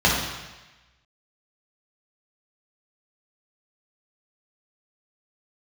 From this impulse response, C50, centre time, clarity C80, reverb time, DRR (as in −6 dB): 1.5 dB, 62 ms, 4.0 dB, 1.1 s, −5.5 dB